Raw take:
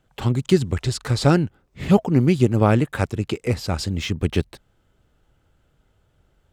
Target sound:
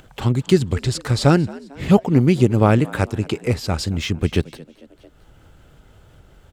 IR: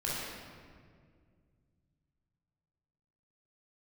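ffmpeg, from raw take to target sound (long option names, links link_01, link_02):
-filter_complex "[0:a]asplit=4[link_01][link_02][link_03][link_04];[link_02]adelay=224,afreqshift=69,volume=-21dB[link_05];[link_03]adelay=448,afreqshift=138,volume=-28.1dB[link_06];[link_04]adelay=672,afreqshift=207,volume=-35.3dB[link_07];[link_01][link_05][link_06][link_07]amix=inputs=4:normalize=0,acompressor=mode=upward:threshold=-38dB:ratio=2.5,volume=2dB"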